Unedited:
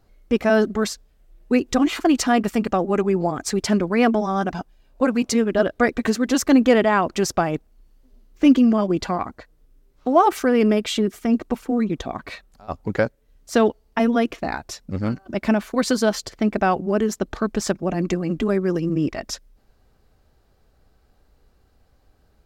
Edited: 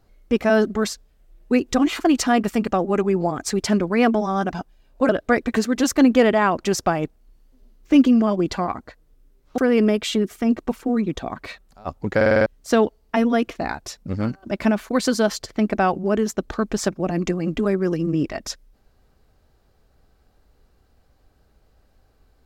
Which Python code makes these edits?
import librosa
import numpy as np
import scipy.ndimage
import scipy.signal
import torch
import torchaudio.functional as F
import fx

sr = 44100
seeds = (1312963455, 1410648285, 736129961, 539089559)

y = fx.edit(x, sr, fx.cut(start_s=5.09, length_s=0.51),
    fx.cut(start_s=10.09, length_s=0.32),
    fx.stutter_over(start_s=12.99, slice_s=0.05, count=6), tone=tone)